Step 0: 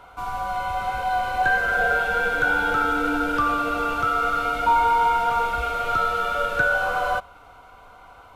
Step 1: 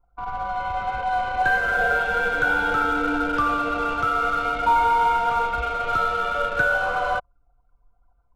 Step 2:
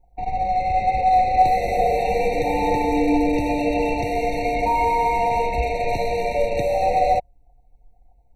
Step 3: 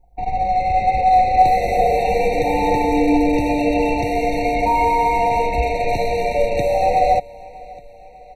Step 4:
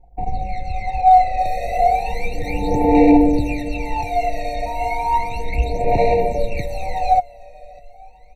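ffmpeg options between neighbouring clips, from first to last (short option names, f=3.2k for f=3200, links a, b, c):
-af "anlmdn=39.8"
-af "alimiter=level_in=12.5dB:limit=-1dB:release=50:level=0:latency=1,afftfilt=real='re*eq(mod(floor(b*sr/1024/920),2),0)':imag='im*eq(mod(floor(b*sr/1024/920),2),0)':win_size=1024:overlap=0.75,volume=-4.5dB"
-af "aecho=1:1:596|1192|1788|2384:0.0794|0.0437|0.024|0.0132,volume=3dB"
-af "aphaser=in_gain=1:out_gain=1:delay=1.6:decay=0.78:speed=0.33:type=sinusoidal,volume=-8dB"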